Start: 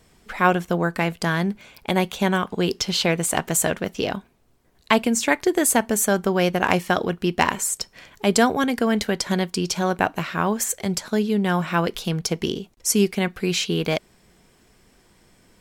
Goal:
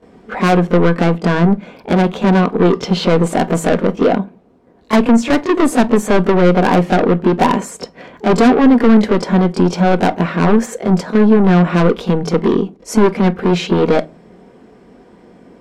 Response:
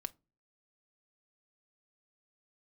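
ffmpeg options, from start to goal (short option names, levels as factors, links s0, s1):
-filter_complex "[0:a]bandpass=f=380:t=q:w=0.86:csg=0,asoftclip=type=tanh:threshold=0.0501,asplit=2[s0][s1];[1:a]atrim=start_sample=2205,adelay=23[s2];[s1][s2]afir=irnorm=-1:irlink=0,volume=4.22[s3];[s0][s3]amix=inputs=2:normalize=0,volume=2.51"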